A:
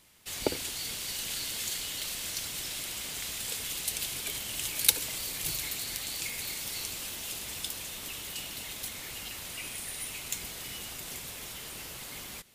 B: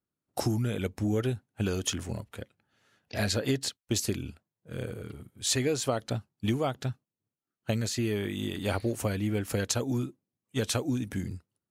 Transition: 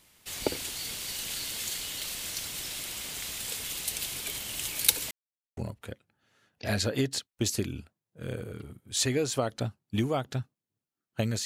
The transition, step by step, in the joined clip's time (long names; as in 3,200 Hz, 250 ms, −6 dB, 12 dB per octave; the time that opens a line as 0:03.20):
A
0:05.11–0:05.57: silence
0:05.57: continue with B from 0:02.07